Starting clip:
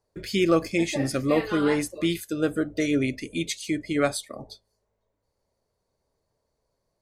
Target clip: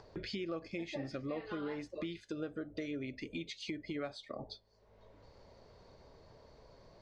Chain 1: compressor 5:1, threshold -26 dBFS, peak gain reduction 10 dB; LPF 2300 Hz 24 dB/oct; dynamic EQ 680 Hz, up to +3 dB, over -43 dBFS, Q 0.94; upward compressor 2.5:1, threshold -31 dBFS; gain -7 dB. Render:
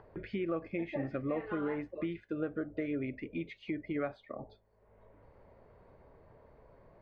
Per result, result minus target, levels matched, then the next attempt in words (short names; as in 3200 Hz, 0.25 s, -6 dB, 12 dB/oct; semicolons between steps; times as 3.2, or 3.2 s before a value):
4000 Hz band -14.5 dB; compressor: peak gain reduction -5 dB
compressor 5:1, threshold -26 dBFS, peak gain reduction 10 dB; LPF 4900 Hz 24 dB/oct; dynamic EQ 680 Hz, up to +3 dB, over -43 dBFS, Q 0.94; upward compressor 2.5:1, threshold -31 dBFS; gain -7 dB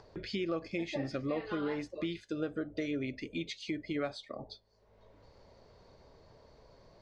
compressor: peak gain reduction -5 dB
compressor 5:1, threshold -32.5 dBFS, peak gain reduction 15 dB; LPF 4900 Hz 24 dB/oct; dynamic EQ 680 Hz, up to +3 dB, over -43 dBFS, Q 0.94; upward compressor 2.5:1, threshold -31 dBFS; gain -7 dB